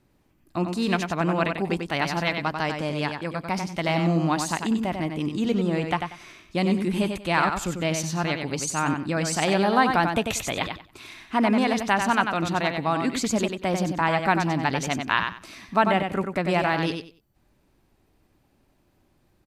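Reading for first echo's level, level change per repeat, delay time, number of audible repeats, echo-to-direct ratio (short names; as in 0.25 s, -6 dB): -6.0 dB, -13.5 dB, 94 ms, 3, -6.0 dB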